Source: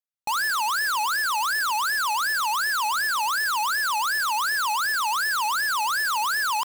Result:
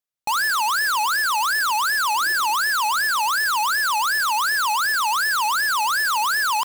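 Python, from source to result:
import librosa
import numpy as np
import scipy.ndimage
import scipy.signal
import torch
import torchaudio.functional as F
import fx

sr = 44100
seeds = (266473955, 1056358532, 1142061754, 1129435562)

y = fx.peak_eq(x, sr, hz=340.0, db=12.0, octaves=0.34, at=(2.13, 2.56))
y = y * librosa.db_to_amplitude(3.5)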